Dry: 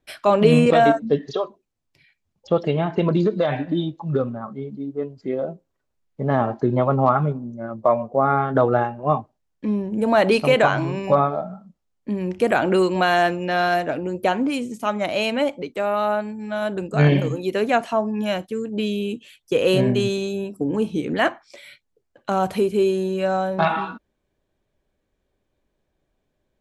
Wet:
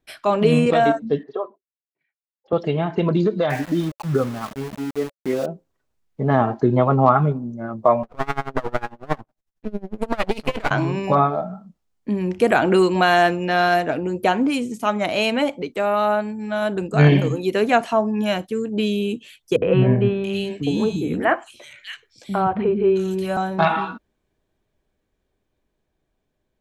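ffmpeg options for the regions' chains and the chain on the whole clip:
-filter_complex "[0:a]asettb=1/sr,asplit=3[s0][s1][s2];[s0]atrim=end=1.234[s3];[s1]atrim=start=1.23:end=2.53,asetpts=PTS-STARTPTS,afade=t=in:d=0.004:c=qsin,afade=t=out:st=1.296:d=0.004:c=qsin,agate=range=0.0224:threshold=0.00282:ratio=3:release=100:detection=peak,asuperpass=centerf=680:order=4:qfactor=0.54[s4];[s2]atrim=start=2.526[s5];[s3][s4]acrossfade=d=0.004:c1=hsin:c2=qsin[s6];[s6][s5]acrossfade=d=0.004:c1=qsin:c2=hsin,asettb=1/sr,asplit=3[s7][s8][s9];[s7]atrim=end=3.504[s10];[s8]atrim=start=3.5:end=5.46,asetpts=PTS-STARTPTS,afade=t=in:d=0.004:c=qsin,afade=t=out:st=1.956:d=0.004:c=qsin,lowpass=f=2100:t=q:w=1.7,aeval=exprs='val(0)*gte(abs(val(0)),0.0224)':c=same[s11];[s9]atrim=start=5.456[s12];[s10][s11]acrossfade=d=0.004:c1=hsin:c2=qsin[s13];[s13][s12]acrossfade=d=0.004:c1=qsin:c2=hsin,asettb=1/sr,asplit=3[s14][s15][s16];[s14]atrim=end=8.034[s17];[s15]atrim=start=8.03:end=10.71,asetpts=PTS-STARTPTS,afade=t=in:d=0.004:c=qsin,afade=t=out:st=2.676:d=0.004:c=qsin,aeval=exprs='max(val(0),0)':c=same,aeval=exprs='val(0)*pow(10,-25*(0.5-0.5*cos(2*PI*11*n/s))/20)':c=same[s18];[s16]atrim=start=10.706[s19];[s17][s18]acrossfade=d=0.004:c1=hsin:c2=qsin[s20];[s20][s19]acrossfade=d=0.004:c1=qsin:c2=hsin,asettb=1/sr,asplit=3[s21][s22][s23];[s21]atrim=end=19.564[s24];[s22]atrim=start=19.56:end=23.37,asetpts=PTS-STARTPTS,afade=t=in:d=0.004:c=qsin,afade=t=out:st=3.806:d=0.004:c=qsin,acrossover=split=3300[s25][s26];[s26]acompressor=threshold=0.00631:ratio=4:attack=1:release=60[s27];[s25][s27]amix=inputs=2:normalize=0,equalizer=f=99:t=o:w=1.2:g=6,acrossover=split=280|2600[s28][s29][s30];[s29]adelay=60[s31];[s30]adelay=680[s32];[s28][s31][s32]amix=inputs=3:normalize=0,atrim=end_sample=168021[s33];[s23]atrim=start=23.366[s34];[s24][s33]acrossfade=d=0.004:c1=hsin:c2=qsin[s35];[s35][s34]acrossfade=d=0.004:c1=qsin:c2=hsin,bandreject=f=560:w=12,dynaudnorm=f=680:g=9:m=3.76,volume=0.841"

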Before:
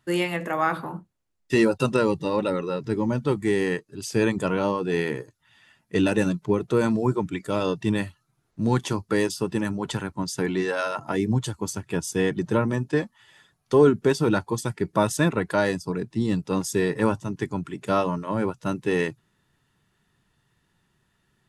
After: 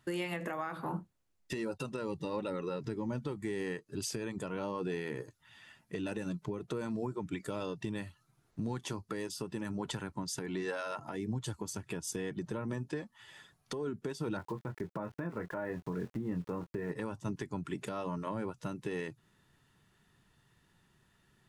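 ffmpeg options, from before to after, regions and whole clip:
-filter_complex "[0:a]asettb=1/sr,asplit=3[s0][s1][s2];[s0]atrim=end=14.374[s3];[s1]atrim=start=14.37:end=16.92,asetpts=PTS-STARTPTS,afade=t=in:d=0.004:c=qsin,afade=t=out:st=2.546:d=0.004:c=qsin,lowpass=f=2000:w=0.5412,lowpass=f=2000:w=1.3066,aeval=exprs='val(0)*gte(abs(val(0)),0.00708)':c=same,asplit=2[s4][s5];[s5]adelay=23,volume=0.398[s6];[s4][s6]amix=inputs=2:normalize=0,atrim=end_sample=112455[s7];[s2]atrim=start=16.916[s8];[s3][s7]acrossfade=d=0.004:c1=hsin:c2=qsin[s9];[s9][s8]acrossfade=d=0.004:c1=qsin:c2=hsin,acompressor=threshold=0.0316:ratio=10,alimiter=level_in=1.33:limit=0.0631:level=0:latency=1:release=213,volume=0.75"

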